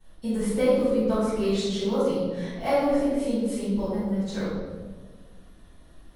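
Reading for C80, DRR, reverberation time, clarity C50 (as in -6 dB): 0.0 dB, -15.0 dB, 1.5 s, -3.0 dB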